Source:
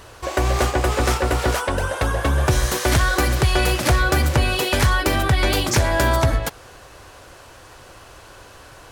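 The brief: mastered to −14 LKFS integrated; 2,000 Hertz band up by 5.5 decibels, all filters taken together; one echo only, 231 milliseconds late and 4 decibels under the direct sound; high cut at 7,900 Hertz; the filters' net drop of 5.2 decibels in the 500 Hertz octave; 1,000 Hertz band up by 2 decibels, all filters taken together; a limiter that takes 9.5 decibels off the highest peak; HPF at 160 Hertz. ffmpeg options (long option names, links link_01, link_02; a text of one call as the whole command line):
ffmpeg -i in.wav -af "highpass=160,lowpass=7900,equalizer=frequency=500:width_type=o:gain=-8.5,equalizer=frequency=1000:width_type=o:gain=3,equalizer=frequency=2000:width_type=o:gain=7,alimiter=limit=-12dB:level=0:latency=1,aecho=1:1:231:0.631,volume=6dB" out.wav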